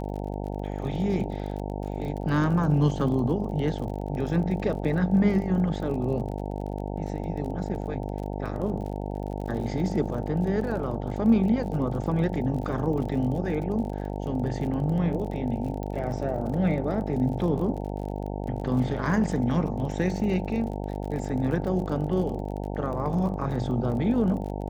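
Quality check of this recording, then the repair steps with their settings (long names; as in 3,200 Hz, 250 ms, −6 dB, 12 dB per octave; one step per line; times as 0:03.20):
mains buzz 50 Hz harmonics 18 −32 dBFS
surface crackle 39 per second −35 dBFS
0:15.83: click −23 dBFS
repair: click removal
hum removal 50 Hz, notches 18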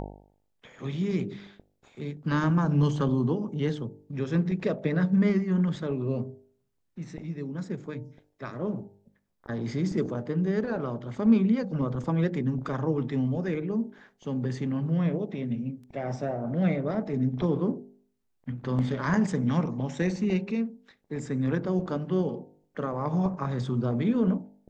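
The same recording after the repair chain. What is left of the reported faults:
0:15.83: click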